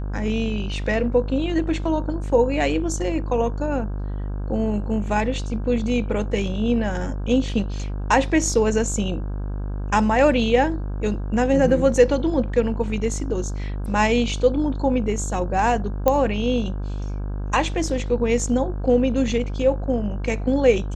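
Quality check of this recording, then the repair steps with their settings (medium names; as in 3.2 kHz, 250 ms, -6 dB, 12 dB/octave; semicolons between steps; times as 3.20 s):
buzz 50 Hz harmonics 33 -27 dBFS
16.08 s: pop -6 dBFS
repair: de-click; de-hum 50 Hz, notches 33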